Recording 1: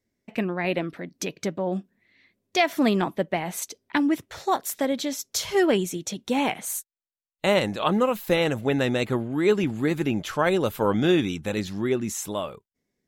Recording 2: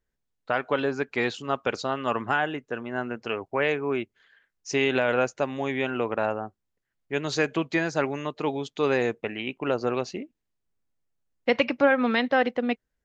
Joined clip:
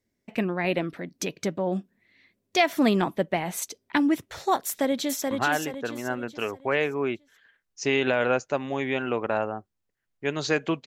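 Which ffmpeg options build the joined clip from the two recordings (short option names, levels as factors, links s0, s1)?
-filter_complex "[0:a]apad=whole_dur=10.86,atrim=end=10.86,atrim=end=5.312[s0];[1:a]atrim=start=2.188:end=7.74[s1];[s0][s1]acrossfade=d=0.004:c1=hsin:c2=hsin,asplit=2[s2][s3];[s3]afade=t=in:st=4.66:d=0.01,afade=t=out:st=5.31:d=0.01,aecho=0:1:430|860|1290|1720|2150:0.630957|0.252383|0.100953|0.0403813|0.0161525[s4];[s2][s4]amix=inputs=2:normalize=0"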